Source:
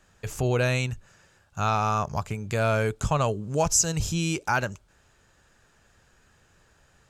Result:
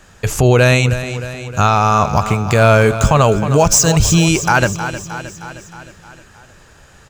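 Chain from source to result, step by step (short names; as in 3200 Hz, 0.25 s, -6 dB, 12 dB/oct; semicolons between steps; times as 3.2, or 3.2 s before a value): 2.04–4.26 median filter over 3 samples; feedback echo 0.311 s, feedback 59%, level -14 dB; maximiser +16.5 dB; gain -1 dB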